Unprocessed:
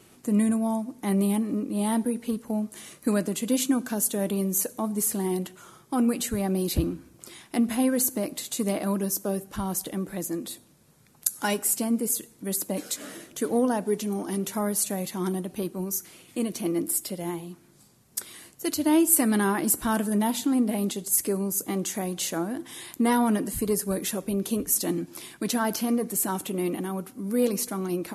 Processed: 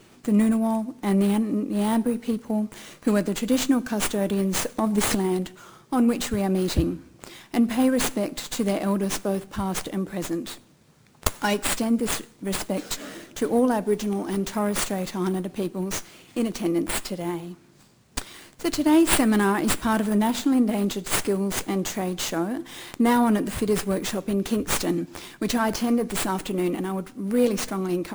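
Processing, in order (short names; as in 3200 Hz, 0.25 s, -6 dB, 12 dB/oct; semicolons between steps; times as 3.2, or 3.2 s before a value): 4.78–5.26 transient shaper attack +8 dB, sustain +12 dB; running maximum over 3 samples; gain +3 dB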